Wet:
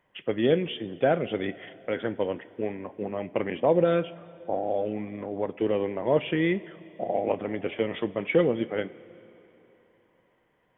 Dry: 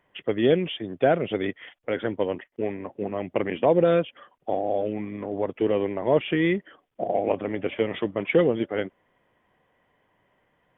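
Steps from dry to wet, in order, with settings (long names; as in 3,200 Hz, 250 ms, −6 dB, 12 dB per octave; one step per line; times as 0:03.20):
0:03.60–0:04.63: low-pass that shuts in the quiet parts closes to 390 Hz, open at −15 dBFS
coupled-rooms reverb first 0.22 s, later 3.4 s, from −18 dB, DRR 11.5 dB
level −2.5 dB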